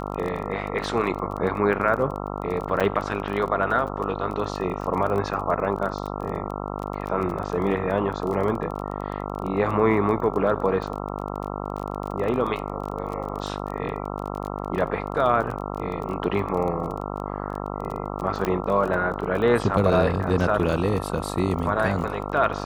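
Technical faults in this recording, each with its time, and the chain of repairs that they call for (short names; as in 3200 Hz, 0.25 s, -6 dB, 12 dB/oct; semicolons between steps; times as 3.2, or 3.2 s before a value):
buzz 50 Hz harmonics 27 -31 dBFS
crackle 24/s -30 dBFS
2.8–2.81 gap 6.3 ms
18.45 pop -11 dBFS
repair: de-click; de-hum 50 Hz, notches 27; interpolate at 2.8, 6.3 ms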